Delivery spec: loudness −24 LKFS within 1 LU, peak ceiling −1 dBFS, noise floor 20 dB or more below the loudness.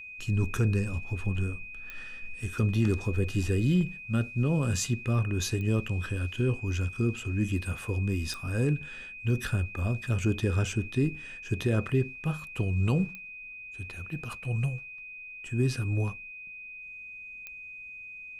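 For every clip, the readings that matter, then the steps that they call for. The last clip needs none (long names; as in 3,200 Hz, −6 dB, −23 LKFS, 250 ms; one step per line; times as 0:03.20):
number of clicks 5; interfering tone 2,500 Hz; level of the tone −41 dBFS; integrated loudness −30.0 LKFS; sample peak −15.0 dBFS; target loudness −24.0 LKFS
→ click removal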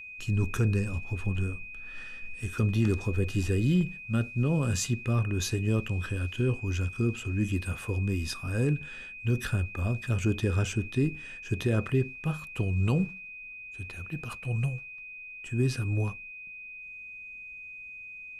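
number of clicks 0; interfering tone 2,500 Hz; level of the tone −41 dBFS
→ notch filter 2,500 Hz, Q 30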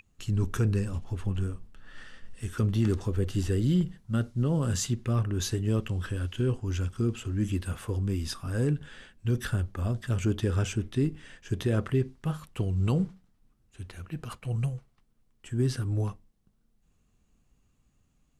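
interfering tone none found; integrated loudness −30.0 LKFS; sample peak −15.5 dBFS; target loudness −24.0 LKFS
→ level +6 dB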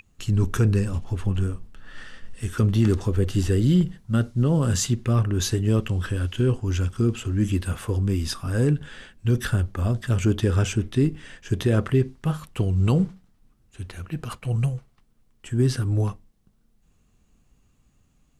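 integrated loudness −24.0 LKFS; sample peak −9.5 dBFS; background noise floor −63 dBFS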